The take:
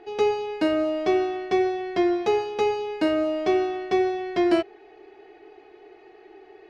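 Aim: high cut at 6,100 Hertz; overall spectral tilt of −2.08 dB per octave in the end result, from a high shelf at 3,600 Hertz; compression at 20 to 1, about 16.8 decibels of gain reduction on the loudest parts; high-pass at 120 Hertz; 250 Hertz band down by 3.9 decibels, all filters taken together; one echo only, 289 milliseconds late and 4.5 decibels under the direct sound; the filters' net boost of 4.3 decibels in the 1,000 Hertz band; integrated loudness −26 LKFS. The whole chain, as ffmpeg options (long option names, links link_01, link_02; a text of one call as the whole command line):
ffmpeg -i in.wav -af "highpass=120,lowpass=6100,equalizer=frequency=250:width_type=o:gain=-8,equalizer=frequency=1000:width_type=o:gain=7.5,highshelf=frequency=3600:gain=-4,acompressor=threshold=-34dB:ratio=20,aecho=1:1:289:0.596,volume=11dB" out.wav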